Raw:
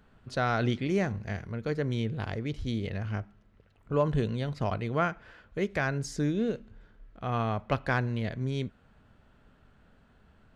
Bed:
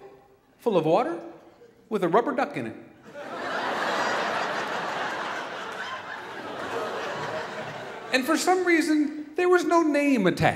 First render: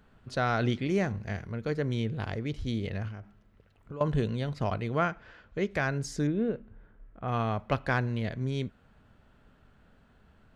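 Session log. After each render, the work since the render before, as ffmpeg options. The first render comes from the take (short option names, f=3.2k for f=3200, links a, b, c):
-filter_complex "[0:a]asettb=1/sr,asplit=3[a][b][c];[a]atrim=end=3.084[d];[b]atrim=start=3.08:end=4.01,asetpts=PTS-STARTPTS,afade=t=in:d=0.004:c=qsin,afade=t=out:st=0.926:d=0.004:c=qsin,acompressor=threshold=-37dB:ratio=6:attack=3.2:release=140:knee=1:detection=peak[e];[c]atrim=start=4.006[f];[d][e]acrossfade=d=0.004:c1=hsin:c2=qsin[g];[g][f]acrossfade=d=0.004:c1=qsin:c2=hsin,asettb=1/sr,asplit=3[h][i][j];[h]atrim=end=5.044[k];[i]atrim=start=5.04:end=5.71,asetpts=PTS-STARTPTS,afade=t=in:d=0.004:c=qsin,afade=t=out:st=0.666:d=0.004:c=qsin,lowpass=f=7.3k:w=0.5412,lowpass=f=7.3k:w=1.3066[l];[j]atrim=start=5.706[m];[k][l]acrossfade=d=0.004:c1=hsin:c2=qsin[n];[n][m]acrossfade=d=0.004:c1=qsin:c2=hsin,asettb=1/sr,asplit=3[o][p][q];[o]atrim=end=6.274[r];[p]atrim=start=6.27:end=7.28,asetpts=PTS-STARTPTS,afade=t=in:d=0.004:c=qsin,afade=t=out:st=1.006:d=0.004:c=qsin,lowpass=1.9k[s];[q]atrim=start=7.276[t];[r][s]acrossfade=d=0.004:c1=hsin:c2=qsin[u];[u][t]acrossfade=d=0.004:c1=qsin:c2=hsin"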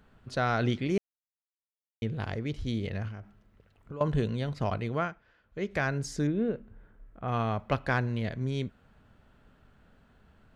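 -filter_complex "[0:a]asplit=5[a][b][c][d][e];[a]atrim=end=0.98,asetpts=PTS-STARTPTS,afade=t=out:st=0.976:d=0.004:c=hsin[f];[b]atrim=start=0.98:end=2.02,asetpts=PTS-STARTPTS,volume=0[g];[c]atrim=start=2.02:end=5.22,asetpts=PTS-STARTPTS,afade=t=in:d=0.004:c=hsin,afade=t=out:st=2.86:d=0.34:silence=0.237137[h];[d]atrim=start=5.22:end=5.43,asetpts=PTS-STARTPTS,volume=-12.5dB[i];[e]atrim=start=5.43,asetpts=PTS-STARTPTS,afade=t=in:d=0.34:silence=0.237137[j];[f][g][h][i][j]concat=n=5:v=0:a=1"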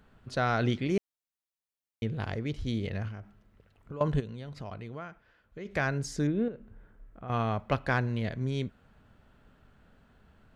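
-filter_complex "[0:a]asplit=3[a][b][c];[a]afade=t=out:st=4.19:d=0.02[d];[b]acompressor=threshold=-41dB:ratio=2.5:attack=3.2:release=140:knee=1:detection=peak,afade=t=in:st=4.19:d=0.02,afade=t=out:st=5.65:d=0.02[e];[c]afade=t=in:st=5.65:d=0.02[f];[d][e][f]amix=inputs=3:normalize=0,asettb=1/sr,asplit=3[g][h][i];[g]atrim=end=6.484[j];[h]atrim=start=6.48:end=7.3,asetpts=PTS-STARTPTS,afade=t=in:d=0.004:c=qsin,afade=t=out:st=0.816:d=0.004:c=qsin,acompressor=threshold=-43dB:ratio=2:attack=3.2:release=140:knee=1:detection=peak[k];[i]atrim=start=7.296[l];[j][k]acrossfade=d=0.004:c1=hsin:c2=qsin[m];[m][l]acrossfade=d=0.004:c1=qsin:c2=hsin"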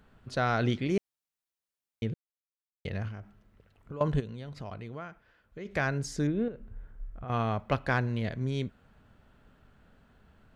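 -filter_complex "[0:a]asettb=1/sr,asplit=3[a][b][c];[a]atrim=end=6.154[d];[b]atrim=start=6.15:end=7.25,asetpts=PTS-STARTPTS,afade=t=in:d=0.004:c=qsin,afade=t=out:st=1.096:d=0.004:c=qsin,asubboost=boost=11:cutoff=110[e];[c]atrim=start=7.246[f];[d][e]acrossfade=d=0.004:c1=hsin:c2=qsin[g];[g][f]acrossfade=d=0.004:c1=qsin:c2=hsin,asplit=3[h][i][j];[h]atrim=end=2.14,asetpts=PTS-STARTPTS,afade=t=out:st=2.136:d=0.004:c=hsin[k];[i]atrim=start=2.14:end=2.85,asetpts=PTS-STARTPTS,volume=0[l];[j]atrim=start=2.85,asetpts=PTS-STARTPTS,afade=t=in:d=0.004:c=hsin[m];[k][l][m]concat=n=3:v=0:a=1"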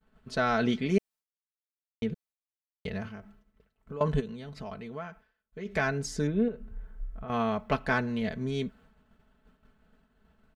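-af "agate=range=-33dB:threshold=-53dB:ratio=3:detection=peak,aecho=1:1:4.6:0.67"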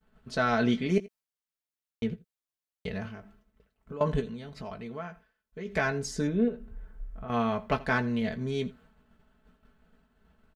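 -filter_complex "[0:a]asplit=2[a][b];[b]adelay=17,volume=-10dB[c];[a][c]amix=inputs=2:normalize=0,aecho=1:1:83:0.0944"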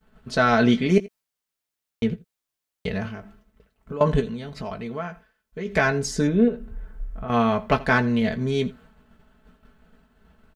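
-af "volume=7.5dB"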